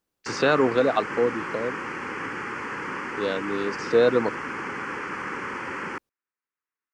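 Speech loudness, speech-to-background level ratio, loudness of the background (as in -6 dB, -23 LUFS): -24.5 LUFS, 7.5 dB, -32.0 LUFS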